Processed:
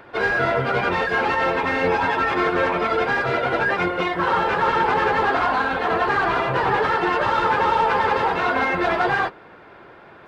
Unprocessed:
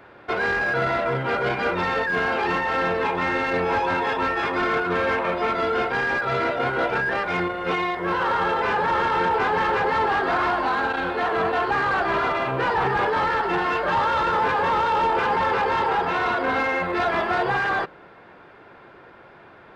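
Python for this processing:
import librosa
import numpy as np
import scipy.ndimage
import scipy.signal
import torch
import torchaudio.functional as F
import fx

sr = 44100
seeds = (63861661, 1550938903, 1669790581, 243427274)

y = fx.stretch_vocoder_free(x, sr, factor=0.52)
y = y * 10.0 ** (5.5 / 20.0)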